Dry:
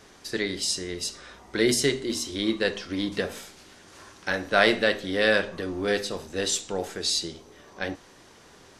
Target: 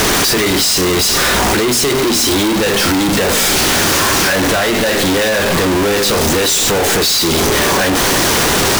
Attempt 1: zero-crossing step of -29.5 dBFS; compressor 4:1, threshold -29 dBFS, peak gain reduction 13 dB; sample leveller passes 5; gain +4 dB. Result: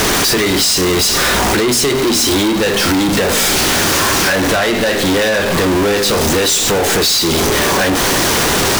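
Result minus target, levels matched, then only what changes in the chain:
zero-crossing step: distortion -6 dB
change: zero-crossing step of -22 dBFS

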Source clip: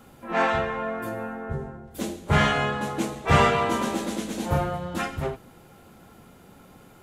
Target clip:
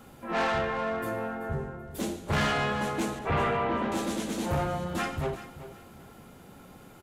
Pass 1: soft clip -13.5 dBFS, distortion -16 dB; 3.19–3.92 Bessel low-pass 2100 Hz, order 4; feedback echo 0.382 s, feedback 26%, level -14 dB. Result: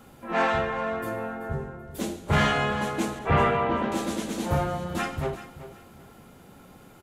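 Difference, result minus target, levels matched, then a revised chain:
soft clip: distortion -9 dB
soft clip -23 dBFS, distortion -8 dB; 3.19–3.92 Bessel low-pass 2100 Hz, order 4; feedback echo 0.382 s, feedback 26%, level -14 dB

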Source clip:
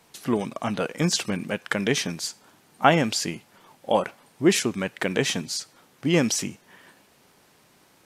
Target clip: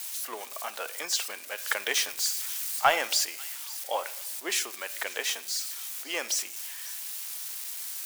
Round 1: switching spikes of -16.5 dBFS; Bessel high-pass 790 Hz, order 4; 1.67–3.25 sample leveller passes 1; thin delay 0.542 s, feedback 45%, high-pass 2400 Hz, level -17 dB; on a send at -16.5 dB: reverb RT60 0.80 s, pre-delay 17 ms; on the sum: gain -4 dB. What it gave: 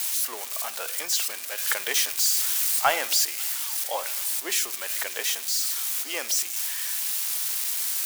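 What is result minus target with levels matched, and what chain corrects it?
switching spikes: distortion +9 dB
switching spikes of -26 dBFS; Bessel high-pass 790 Hz, order 4; 1.67–3.25 sample leveller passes 1; thin delay 0.542 s, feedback 45%, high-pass 2400 Hz, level -17 dB; on a send at -16.5 dB: reverb RT60 0.80 s, pre-delay 17 ms; on the sum: gain -4 dB

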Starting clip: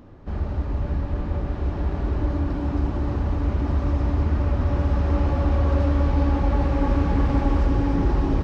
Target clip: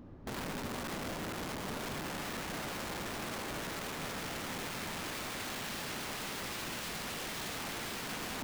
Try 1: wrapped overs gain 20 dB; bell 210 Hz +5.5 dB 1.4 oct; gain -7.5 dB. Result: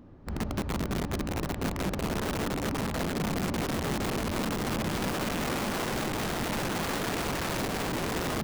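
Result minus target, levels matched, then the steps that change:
wrapped overs: distortion -25 dB
change: wrapped overs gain 28.5 dB

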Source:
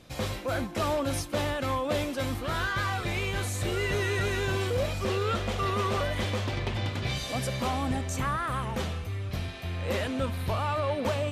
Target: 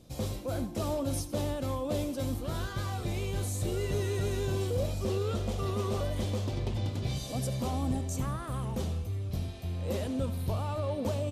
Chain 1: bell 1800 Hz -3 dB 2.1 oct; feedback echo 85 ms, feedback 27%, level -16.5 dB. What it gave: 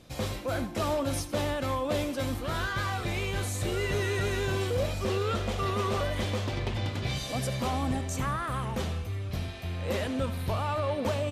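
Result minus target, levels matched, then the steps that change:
2000 Hz band +8.5 dB
change: bell 1800 Hz -15 dB 2.1 oct

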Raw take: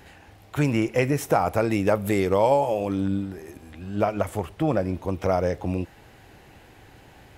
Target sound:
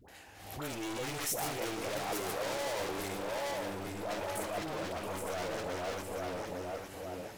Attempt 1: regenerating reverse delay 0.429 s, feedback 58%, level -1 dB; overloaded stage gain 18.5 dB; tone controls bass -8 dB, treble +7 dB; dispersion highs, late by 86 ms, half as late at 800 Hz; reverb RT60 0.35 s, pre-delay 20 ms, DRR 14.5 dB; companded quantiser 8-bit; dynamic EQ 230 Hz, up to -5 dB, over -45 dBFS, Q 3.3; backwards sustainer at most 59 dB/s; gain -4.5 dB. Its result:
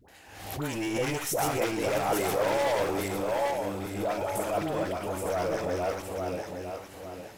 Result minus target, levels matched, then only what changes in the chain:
overloaded stage: distortion -6 dB
change: overloaded stage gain 30 dB

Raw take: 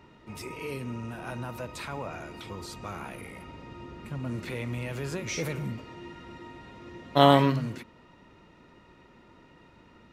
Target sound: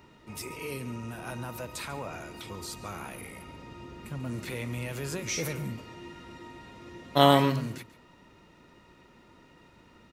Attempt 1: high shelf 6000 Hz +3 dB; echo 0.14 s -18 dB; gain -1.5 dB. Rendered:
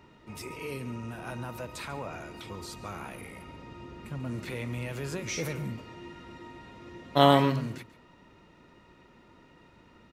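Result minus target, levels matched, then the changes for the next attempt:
8000 Hz band -4.0 dB
change: high shelf 6000 Hz +11 dB

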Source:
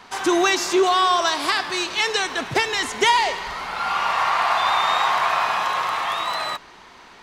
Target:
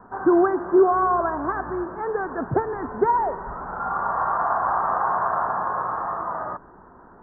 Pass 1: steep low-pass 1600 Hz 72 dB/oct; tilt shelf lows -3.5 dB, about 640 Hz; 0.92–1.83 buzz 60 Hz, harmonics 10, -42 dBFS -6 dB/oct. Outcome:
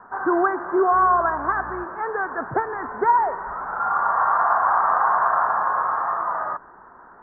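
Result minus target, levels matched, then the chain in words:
500 Hz band -5.0 dB
steep low-pass 1600 Hz 72 dB/oct; tilt shelf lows +5.5 dB, about 640 Hz; 0.92–1.83 buzz 60 Hz, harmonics 10, -42 dBFS -6 dB/oct

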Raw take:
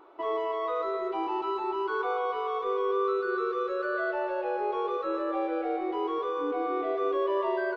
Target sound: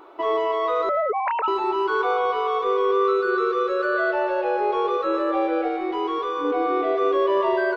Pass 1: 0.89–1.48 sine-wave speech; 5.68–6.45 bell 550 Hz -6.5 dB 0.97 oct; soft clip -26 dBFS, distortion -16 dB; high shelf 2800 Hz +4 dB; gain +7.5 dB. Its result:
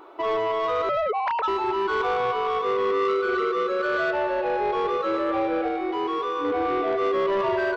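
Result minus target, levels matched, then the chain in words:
soft clip: distortion +17 dB
0.89–1.48 sine-wave speech; 5.68–6.45 bell 550 Hz -6.5 dB 0.97 oct; soft clip -15 dBFS, distortion -33 dB; high shelf 2800 Hz +4 dB; gain +7.5 dB

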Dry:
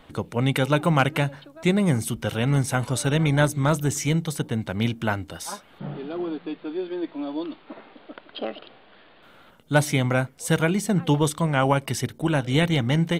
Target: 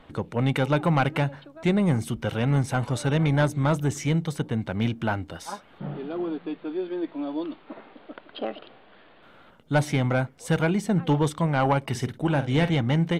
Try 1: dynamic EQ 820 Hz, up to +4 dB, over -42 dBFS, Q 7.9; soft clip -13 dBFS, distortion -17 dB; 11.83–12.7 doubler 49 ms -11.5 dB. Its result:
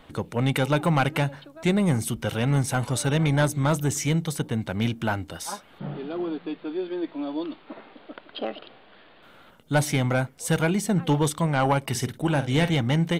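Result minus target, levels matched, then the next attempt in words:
4000 Hz band +3.0 dB
dynamic EQ 820 Hz, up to +4 dB, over -42 dBFS, Q 7.9; LPF 2900 Hz 6 dB/oct; soft clip -13 dBFS, distortion -17 dB; 11.83–12.7 doubler 49 ms -11.5 dB

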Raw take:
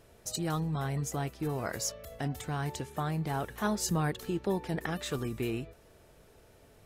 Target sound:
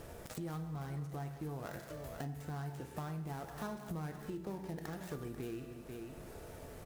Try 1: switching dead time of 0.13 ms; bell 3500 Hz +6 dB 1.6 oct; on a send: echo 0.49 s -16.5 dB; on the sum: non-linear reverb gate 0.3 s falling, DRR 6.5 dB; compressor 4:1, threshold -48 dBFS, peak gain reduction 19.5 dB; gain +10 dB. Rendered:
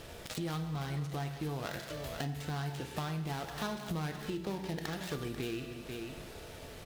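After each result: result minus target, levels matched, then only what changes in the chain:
4000 Hz band +8.5 dB; compressor: peak gain reduction -4.5 dB
change: bell 3500 Hz -5 dB 1.6 oct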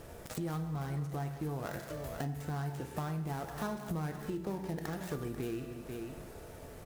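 compressor: peak gain reduction -5 dB
change: compressor 4:1, threshold -54.5 dBFS, peak gain reduction 24 dB

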